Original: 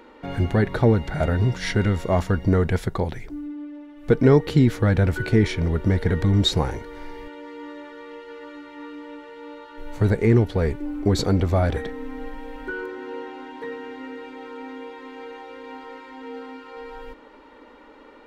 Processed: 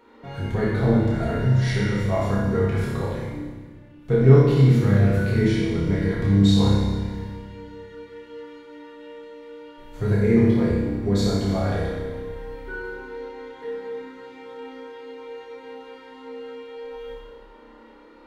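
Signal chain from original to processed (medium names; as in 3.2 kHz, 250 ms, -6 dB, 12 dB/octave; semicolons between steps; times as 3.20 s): flutter echo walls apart 5.2 m, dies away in 0.58 s; reverberation RT60 1.5 s, pre-delay 3 ms, DRR -5 dB; trim -10 dB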